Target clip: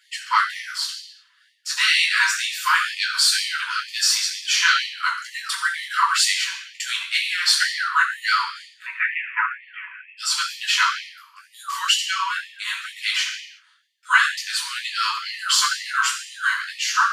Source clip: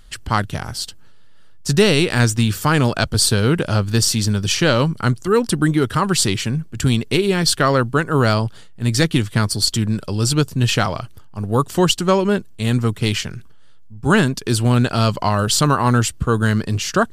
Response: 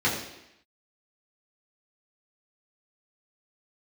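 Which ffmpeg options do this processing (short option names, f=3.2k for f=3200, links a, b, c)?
-filter_complex "[0:a]asplit=3[a][b][c];[a]afade=t=out:st=8.84:d=0.02[d];[b]asuperpass=centerf=1300:order=20:qfactor=0.62,afade=t=in:st=8.84:d=0.02,afade=t=out:st=10.17:d=0.02[e];[c]afade=t=in:st=10.17:d=0.02[f];[d][e][f]amix=inputs=3:normalize=0[g];[1:a]atrim=start_sample=2205,afade=t=out:st=0.44:d=0.01,atrim=end_sample=19845[h];[g][h]afir=irnorm=-1:irlink=0,afftfilt=real='re*gte(b*sr/1024,900*pow(1800/900,0.5+0.5*sin(2*PI*2.1*pts/sr)))':imag='im*gte(b*sr/1024,900*pow(1800/900,0.5+0.5*sin(2*PI*2.1*pts/sr)))':win_size=1024:overlap=0.75,volume=-9dB"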